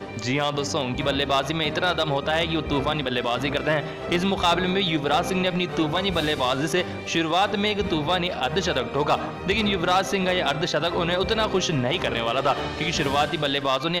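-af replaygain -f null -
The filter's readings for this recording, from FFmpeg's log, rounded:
track_gain = +3.9 dB
track_peak = 0.154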